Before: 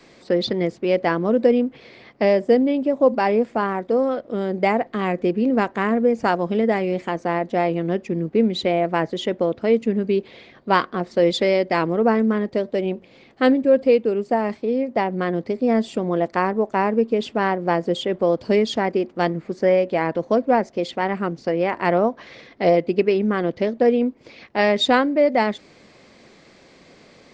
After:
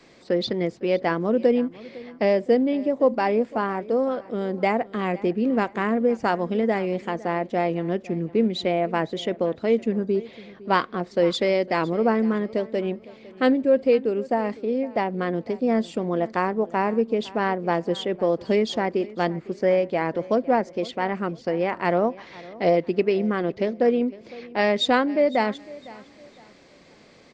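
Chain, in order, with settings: spectral gain 9.96–10.2, 1700–4600 Hz -10 dB; on a send: feedback echo 0.507 s, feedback 32%, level -20 dB; on the sum: gain -3 dB

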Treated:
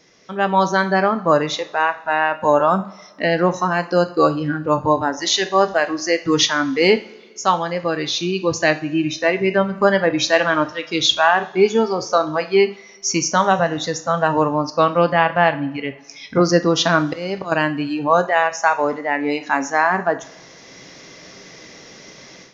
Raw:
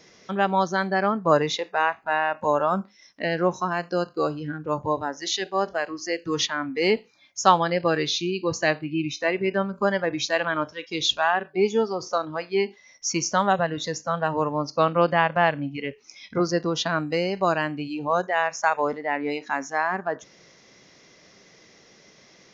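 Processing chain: AGC gain up to 13.5 dB; 16.97–17.52 auto swell 0.273 s; two-slope reverb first 0.42 s, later 1.8 s, from -18 dB, DRR 9.5 dB; gain -1.5 dB

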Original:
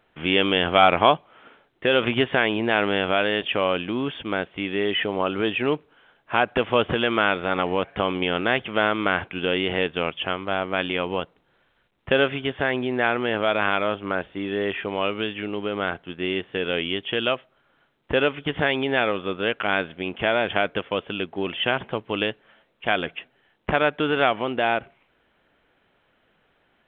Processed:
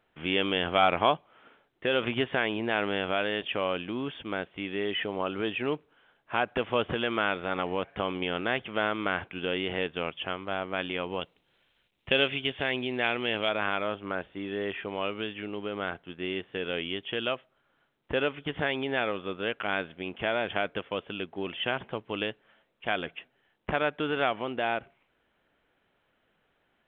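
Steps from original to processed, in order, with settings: 11.21–13.49 resonant high shelf 2000 Hz +6.5 dB, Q 1.5; gain -7 dB

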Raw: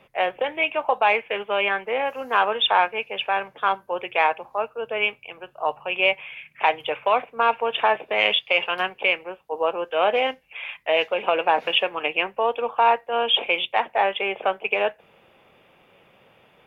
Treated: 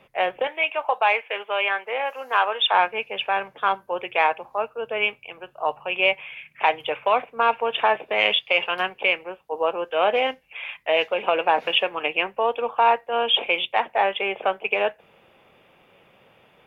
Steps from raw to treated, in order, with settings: 0.47–2.74 HPF 530 Hz 12 dB/oct

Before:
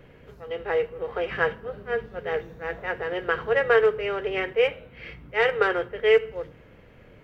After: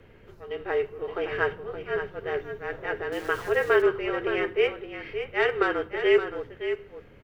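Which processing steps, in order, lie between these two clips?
echo 0.57 s -9 dB; 3.12–3.82 sample gate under -37.5 dBFS; frequency shift -38 Hz; gain -2 dB

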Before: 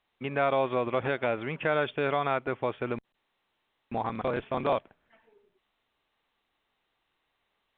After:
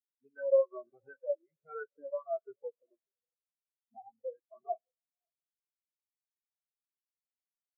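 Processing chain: moving spectral ripple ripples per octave 1.2, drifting +1.3 Hz, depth 21 dB; on a send: diffused feedback echo 0.576 s, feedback 48%, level -14 dB; on the sum: spring tank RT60 2.2 s, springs 32/37/45 ms, chirp 55 ms, DRR 12.5 dB; spectral expander 4:1; gain -8 dB

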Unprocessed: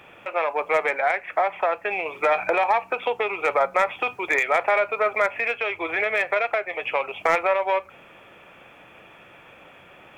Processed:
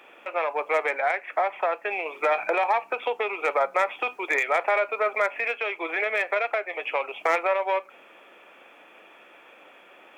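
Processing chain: HPF 260 Hz 24 dB/oct; gain -2.5 dB

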